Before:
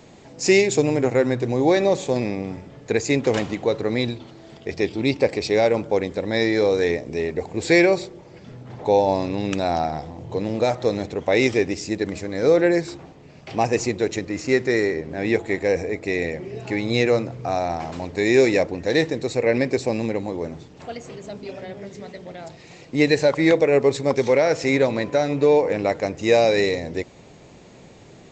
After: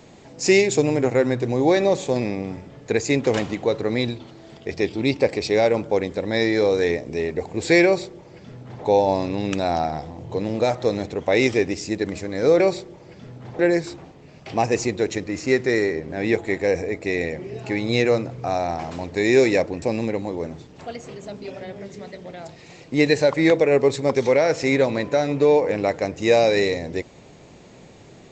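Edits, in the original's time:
0:07.85–0:08.84: duplicate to 0:12.60
0:18.83–0:19.83: remove

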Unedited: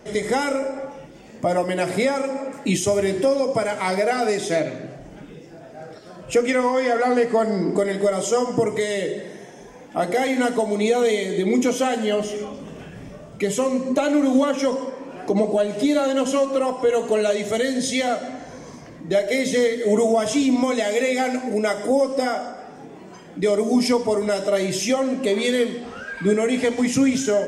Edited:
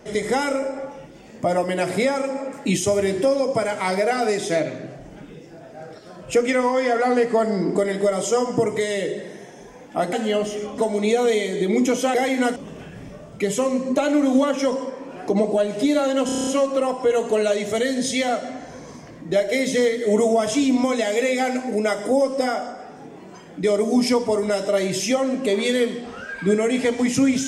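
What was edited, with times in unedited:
0:10.13–0:10.55: swap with 0:11.91–0:12.56
0:16.26: stutter 0.03 s, 8 plays

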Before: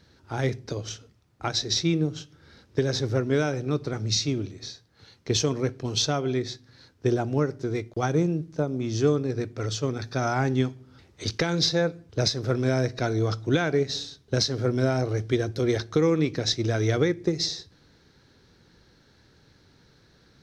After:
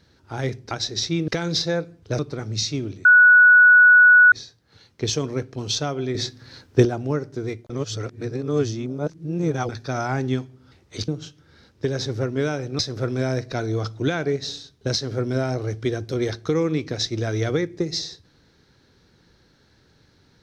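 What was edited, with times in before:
0:00.71–0:01.45: remove
0:02.02–0:03.73: swap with 0:11.35–0:12.26
0:04.59: insert tone 1,470 Hz −8 dBFS 1.27 s
0:06.42–0:07.12: clip gain +9 dB
0:07.97–0:09.96: reverse

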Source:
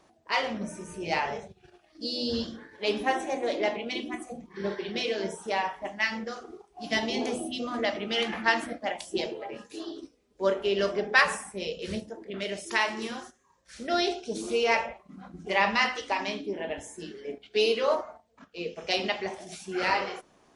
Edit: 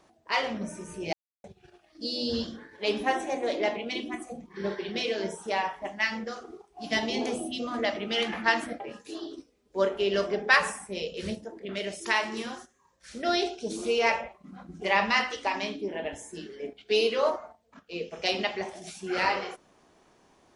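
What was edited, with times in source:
0:01.13–0:01.44: silence
0:08.80–0:09.45: remove

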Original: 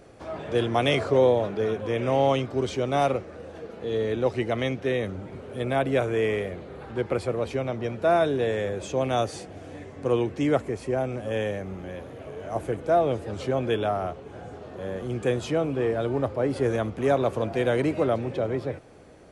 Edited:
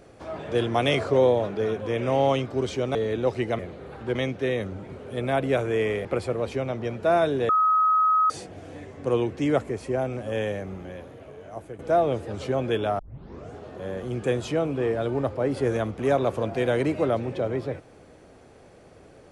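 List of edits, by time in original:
0:02.95–0:03.94: remove
0:06.48–0:07.04: move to 0:04.58
0:08.48–0:09.29: beep over 1,270 Hz −17 dBFS
0:11.64–0:12.78: fade out, to −12 dB
0:13.98: tape start 0.53 s

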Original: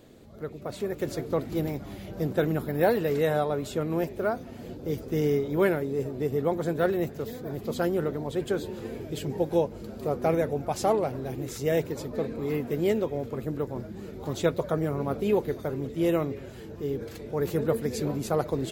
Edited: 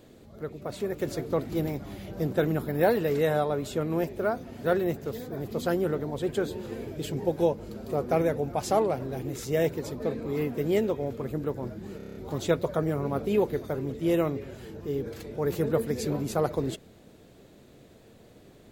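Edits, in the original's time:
0:04.64–0:06.77: remove
0:14.10: stutter 0.03 s, 7 plays

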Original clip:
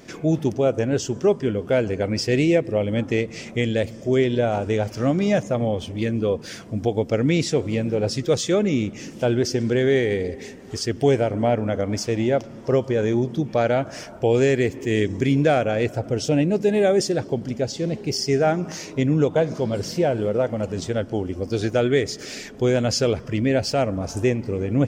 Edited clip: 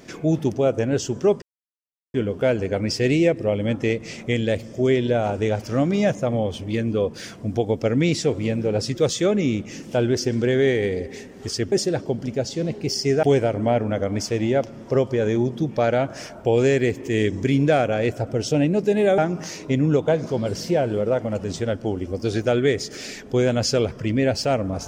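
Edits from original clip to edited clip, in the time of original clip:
0:01.42: splice in silence 0.72 s
0:16.95–0:18.46: move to 0:11.00

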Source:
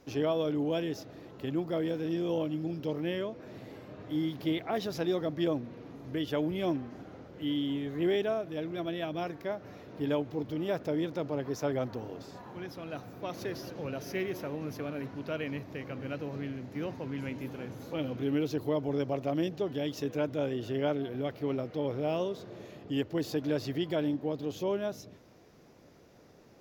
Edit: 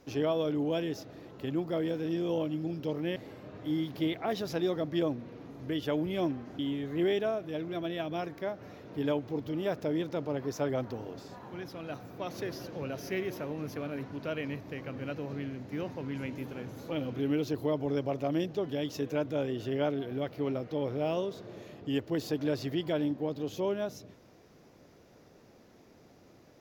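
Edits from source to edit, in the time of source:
0:03.16–0:03.61: remove
0:07.04–0:07.62: remove

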